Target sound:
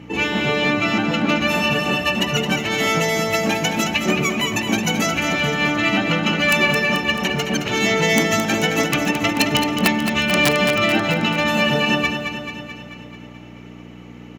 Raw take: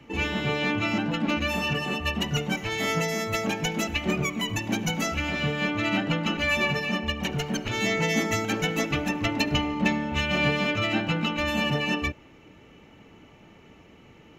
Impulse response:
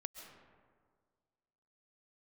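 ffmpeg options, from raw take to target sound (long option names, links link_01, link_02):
-filter_complex "[0:a]aeval=exprs='(mod(3.98*val(0)+1,2)-1)/3.98':channel_layout=same,aecho=1:1:218|436|654|872|1090|1308|1526|1744:0.422|0.253|0.152|0.0911|0.0547|0.0328|0.0197|0.0118,asplit=2[link_01][link_02];[1:a]atrim=start_sample=2205[link_03];[link_02][link_03]afir=irnorm=-1:irlink=0,volume=-14.5dB[link_04];[link_01][link_04]amix=inputs=2:normalize=0,aeval=exprs='val(0)+0.0141*(sin(2*PI*60*n/s)+sin(2*PI*2*60*n/s)/2+sin(2*PI*3*60*n/s)/3+sin(2*PI*4*60*n/s)/4+sin(2*PI*5*60*n/s)/5)':channel_layout=same,highpass=170,volume=6.5dB"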